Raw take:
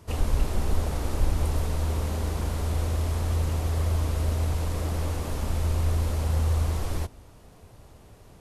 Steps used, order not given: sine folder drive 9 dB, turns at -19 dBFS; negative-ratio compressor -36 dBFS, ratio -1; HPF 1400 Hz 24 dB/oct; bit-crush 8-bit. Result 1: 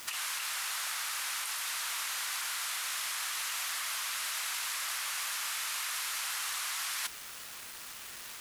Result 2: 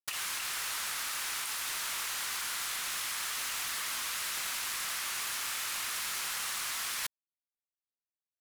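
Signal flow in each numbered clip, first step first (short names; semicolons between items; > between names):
HPF > sine folder > bit-crush > negative-ratio compressor; HPF > bit-crush > sine folder > negative-ratio compressor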